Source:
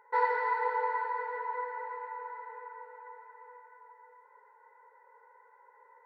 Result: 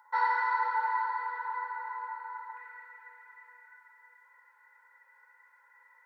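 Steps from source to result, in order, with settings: peaking EQ 2.3 kHz -12 dB 0.84 oct, from 2.57 s 920 Hz; high-pass 990 Hz 24 dB/octave; simulated room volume 2600 m³, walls furnished, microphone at 2.3 m; trim +6.5 dB

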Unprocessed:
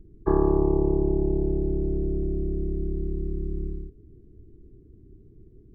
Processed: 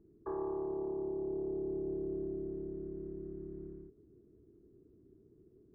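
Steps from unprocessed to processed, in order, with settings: dynamic bell 410 Hz, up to +5 dB, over -33 dBFS, Q 2.3; in parallel at +2 dB: compression, threshold -30 dBFS, peak gain reduction 16 dB; on the sum: differentiator; saturation -34.5 dBFS, distortion -19 dB; peak limiter -44 dBFS, peak gain reduction 9 dB; Gaussian low-pass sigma 7.5 samples; trim +14 dB

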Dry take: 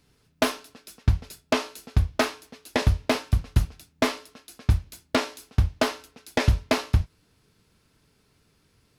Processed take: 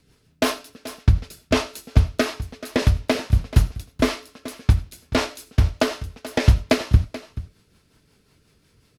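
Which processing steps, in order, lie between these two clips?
rotary cabinet horn 5.5 Hz; delay 432 ms -15.5 dB; on a send at -17 dB: reverberation, pre-delay 40 ms; on the sum: trim +6 dB

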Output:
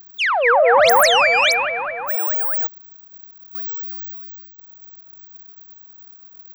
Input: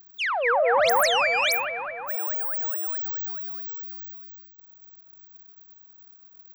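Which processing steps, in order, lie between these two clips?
1.46–1.88 s: low-pass 6.7 kHz 12 dB/octave; 2.67–3.55 s: room tone; trim +7.5 dB

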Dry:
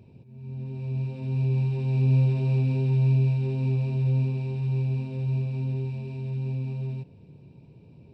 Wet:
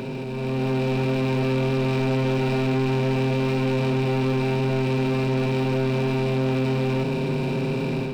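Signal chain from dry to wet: spectral levelling over time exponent 0.2; high-pass 200 Hz 24 dB/octave; peaking EQ 1.5 kHz +11 dB 0.31 oct; waveshaping leveller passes 3; level rider gain up to 6 dB; trim -4 dB

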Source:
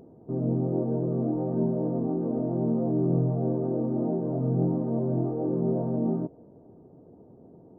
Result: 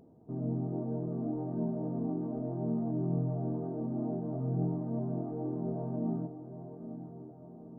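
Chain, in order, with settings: peaking EQ 380 Hz -6 dB 0.28 oct; band-stop 520 Hz, Q 12; on a send: echo that smears into a reverb 909 ms, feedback 55%, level -10.5 dB; on the sum: trim -6.5 dB

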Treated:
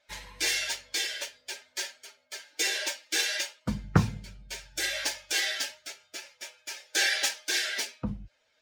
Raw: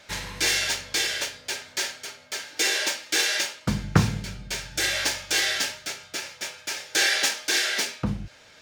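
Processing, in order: expander on every frequency bin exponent 1.5; trim -2 dB

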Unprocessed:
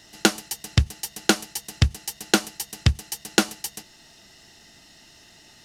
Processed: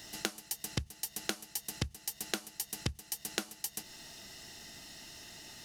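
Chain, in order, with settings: treble shelf 11 kHz +10.5 dB; compression 10:1, threshold -33 dBFS, peak gain reduction 21.5 dB

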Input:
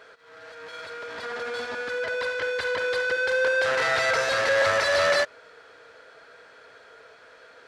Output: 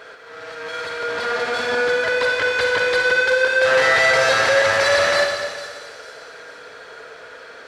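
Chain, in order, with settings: compression, threshold -24 dBFS, peak gain reduction 6.5 dB; feedback echo behind a high-pass 451 ms, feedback 46%, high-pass 5 kHz, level -10.5 dB; on a send at -2 dB: reverberation RT60 1.7 s, pre-delay 43 ms; on the sum: trim +9 dB

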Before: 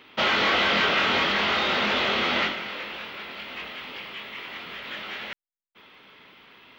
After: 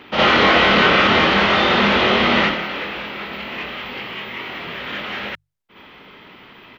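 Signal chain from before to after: tilt EQ -1.5 dB/octave; hum notches 50/100/150 Hz; pitch shift -0.5 st; on a send: reverse echo 59 ms -5.5 dB; on the sum: trim +8 dB

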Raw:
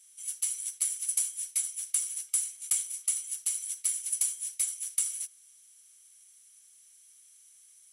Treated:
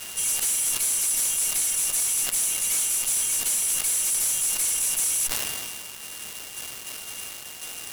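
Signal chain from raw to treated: coarse spectral quantiser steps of 15 dB; brick-wall FIR high-pass 2.1 kHz; spectral gate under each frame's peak -10 dB weak; whistle 2.8 kHz -63 dBFS; peaking EQ 4.6 kHz -8.5 dB 2.1 oct; in parallel at 0 dB: compression, threshold -56 dBFS, peak gain reduction 19.5 dB; on the sum: fuzz box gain 57 dB, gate -59 dBFS; decay stretcher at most 24 dB/s; trim -9 dB

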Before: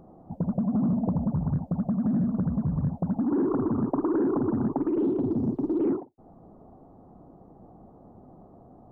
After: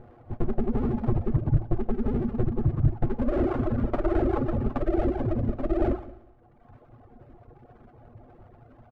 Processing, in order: comb filter that takes the minimum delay 8.4 ms; peaking EQ 190 Hz -12.5 dB 0.84 oct; feedback delay 180 ms, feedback 24%, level -9.5 dB; reverb removal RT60 1.4 s; tone controls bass +9 dB, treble -9 dB; band-stop 960 Hz, Q 10; feedback comb 56 Hz, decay 0.83 s, harmonics all, mix 40%; trim +6.5 dB

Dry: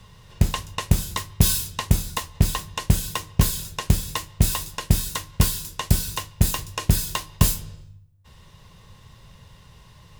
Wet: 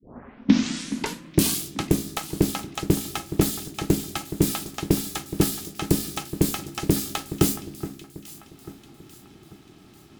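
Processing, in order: tape start-up on the opening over 1.68 s; ring modulator 240 Hz; echo whose repeats swap between lows and highs 421 ms, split 2.1 kHz, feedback 63%, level -12.5 dB

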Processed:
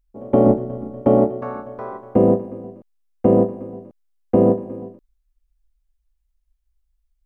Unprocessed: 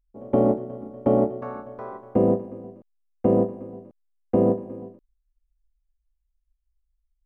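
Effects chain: 0.46–1.02 s: bass shelf 110 Hz +11.5 dB; trim +5 dB

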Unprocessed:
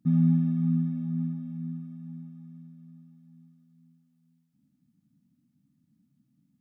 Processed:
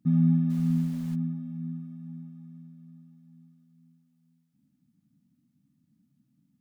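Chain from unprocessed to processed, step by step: 0.49–1.14 s: added noise pink -53 dBFS

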